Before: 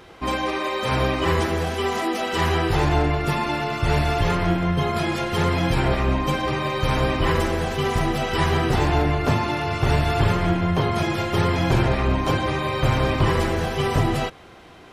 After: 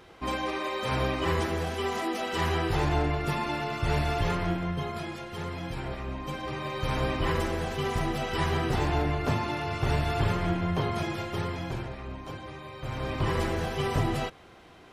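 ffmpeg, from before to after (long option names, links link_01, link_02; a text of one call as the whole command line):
ffmpeg -i in.wav -af "volume=12.5dB,afade=type=out:start_time=4.26:duration=0.96:silence=0.398107,afade=type=in:start_time=6.13:duration=0.92:silence=0.421697,afade=type=out:start_time=10.85:duration=1.07:silence=0.281838,afade=type=in:start_time=12.81:duration=0.61:silence=0.266073" out.wav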